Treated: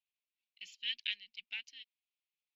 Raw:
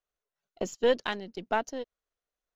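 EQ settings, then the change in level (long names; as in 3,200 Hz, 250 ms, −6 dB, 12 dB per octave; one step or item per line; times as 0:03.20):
elliptic high-pass filter 2,400 Hz, stop band 50 dB
high-frequency loss of the air 390 metres
+10.5 dB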